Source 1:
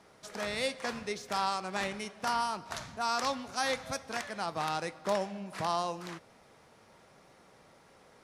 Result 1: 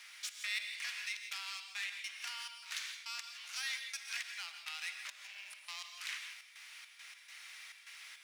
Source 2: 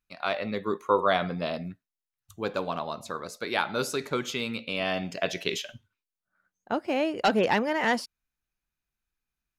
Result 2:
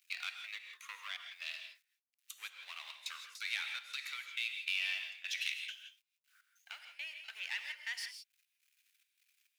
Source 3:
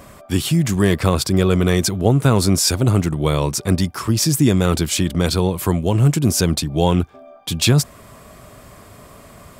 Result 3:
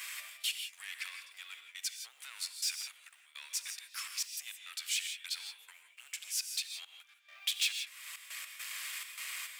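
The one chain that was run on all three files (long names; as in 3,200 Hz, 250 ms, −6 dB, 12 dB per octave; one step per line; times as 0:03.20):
mu-law and A-law mismatch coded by mu
downward compressor 3 to 1, threshold −34 dBFS
gate pattern "xx.x.xxx." 103 BPM −24 dB
speech leveller within 4 dB 2 s
soft clipping −27 dBFS
four-pole ladder high-pass 1,900 Hz, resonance 40%
reverb whose tail is shaped and stops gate 190 ms rising, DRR 6 dB
level +8.5 dB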